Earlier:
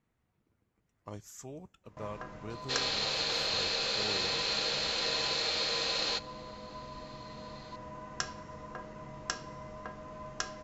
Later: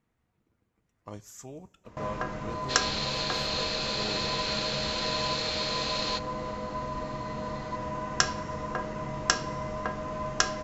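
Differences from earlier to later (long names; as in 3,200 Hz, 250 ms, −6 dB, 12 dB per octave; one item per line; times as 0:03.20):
speech: send +11.5 dB
first sound +11.0 dB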